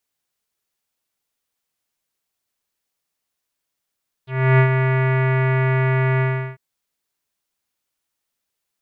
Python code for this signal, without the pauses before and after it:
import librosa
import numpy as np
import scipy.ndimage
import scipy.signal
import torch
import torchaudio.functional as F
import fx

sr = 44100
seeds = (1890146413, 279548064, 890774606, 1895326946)

y = fx.sub_voice(sr, note=48, wave='square', cutoff_hz=2100.0, q=3.0, env_oct=1.0, env_s=0.05, attack_ms=318.0, decay_s=0.09, sustain_db=-6, release_s=0.36, note_s=1.94, slope=24)